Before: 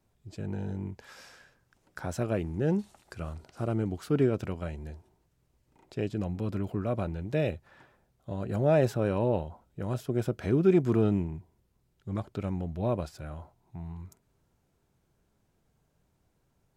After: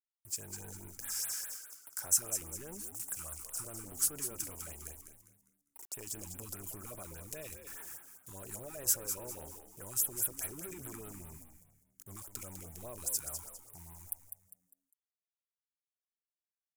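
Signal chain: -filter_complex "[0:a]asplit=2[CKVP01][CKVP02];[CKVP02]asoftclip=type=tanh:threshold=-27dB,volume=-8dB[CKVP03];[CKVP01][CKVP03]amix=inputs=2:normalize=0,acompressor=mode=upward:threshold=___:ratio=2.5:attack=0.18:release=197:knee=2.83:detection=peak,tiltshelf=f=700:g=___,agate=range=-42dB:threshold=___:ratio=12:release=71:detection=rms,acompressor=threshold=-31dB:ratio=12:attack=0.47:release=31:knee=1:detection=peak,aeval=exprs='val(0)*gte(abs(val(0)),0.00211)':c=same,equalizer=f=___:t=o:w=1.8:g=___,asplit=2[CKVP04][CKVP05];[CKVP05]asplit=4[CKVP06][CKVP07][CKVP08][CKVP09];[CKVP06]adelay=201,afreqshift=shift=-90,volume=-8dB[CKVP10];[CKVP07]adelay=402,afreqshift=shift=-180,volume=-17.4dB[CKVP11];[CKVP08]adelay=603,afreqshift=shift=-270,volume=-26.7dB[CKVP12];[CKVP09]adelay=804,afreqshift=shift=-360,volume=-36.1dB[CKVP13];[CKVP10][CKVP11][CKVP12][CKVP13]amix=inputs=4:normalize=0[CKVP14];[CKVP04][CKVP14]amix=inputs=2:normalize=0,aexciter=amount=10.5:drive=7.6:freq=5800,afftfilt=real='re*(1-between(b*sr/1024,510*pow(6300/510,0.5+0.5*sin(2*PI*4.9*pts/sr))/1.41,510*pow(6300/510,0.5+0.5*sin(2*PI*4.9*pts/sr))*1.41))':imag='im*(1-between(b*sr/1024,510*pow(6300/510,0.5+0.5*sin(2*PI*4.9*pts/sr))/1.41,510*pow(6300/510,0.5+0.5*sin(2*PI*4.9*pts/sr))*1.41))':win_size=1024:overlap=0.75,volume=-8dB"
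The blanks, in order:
-35dB, -4.5, -50dB, 180, -9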